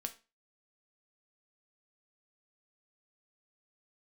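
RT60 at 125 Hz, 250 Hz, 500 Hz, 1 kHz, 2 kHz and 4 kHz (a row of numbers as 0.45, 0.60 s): 0.30, 0.35, 0.30, 0.30, 0.30, 0.30 s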